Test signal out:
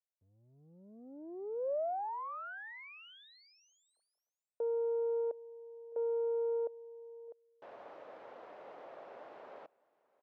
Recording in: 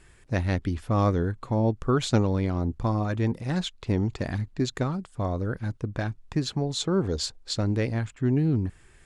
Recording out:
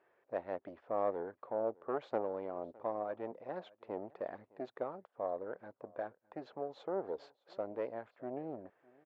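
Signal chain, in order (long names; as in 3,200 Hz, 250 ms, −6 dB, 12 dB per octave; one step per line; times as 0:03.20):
one-sided soft clipper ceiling −22.5 dBFS
four-pole ladder band-pass 680 Hz, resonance 45%
high-frequency loss of the air 65 metres
single-tap delay 611 ms −24 dB
level +4.5 dB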